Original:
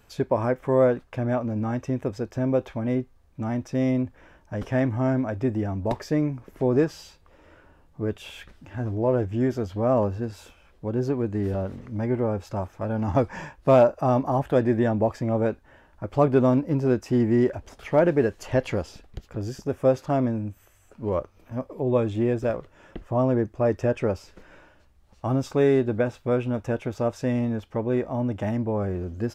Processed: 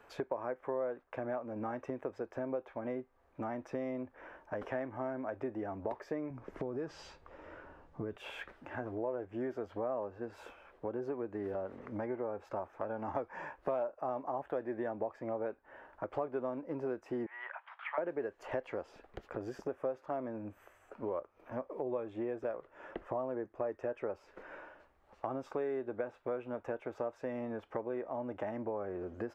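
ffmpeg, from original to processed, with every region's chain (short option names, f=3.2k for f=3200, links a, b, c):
-filter_complex "[0:a]asettb=1/sr,asplit=3[a][b][c];[a]atrim=end=6.304[d];[b]atrim=start=6.3:end=8.16,asetpts=PTS-STARTPTS,afade=t=in:d=0.004:c=qsin,afade=t=out:st=1.856:d=0.004:c=qsin,lowpass=5.9k,bass=f=250:g=10,treble=f=4k:g=9,acompressor=threshold=-22dB:ratio=6:attack=3.2:release=140:knee=1:detection=peak[e];[c]atrim=start=8.156[f];[d][e]acrossfade=d=0.004:c1=hsin:c2=qsin[g];[g][f]acrossfade=d=0.004:c1=qsin:c2=hsin,asettb=1/sr,asplit=3[h][i][j];[h]atrim=end=17.264[k];[i]atrim=start=17.26:end=17.98,asetpts=PTS-STARTPTS,afade=t=in:d=0.004:c=qsin,afade=t=out:st=0.716:d=0.004:c=qsin,asuperpass=centerf=1800:order=8:qfactor=0.72,bandreject=f=2.7k:w=26[l];[j]atrim=start=17.976[m];[k][l]acrossfade=d=0.004:c1=hsin:c2=qsin[n];[n][m]acrossfade=d=0.004:c1=qsin:c2=hsin,acrossover=split=330 2200:gain=0.112 1 0.126[o][p][q];[o][p][q]amix=inputs=3:normalize=0,acompressor=threshold=-41dB:ratio=4,volume=4dB"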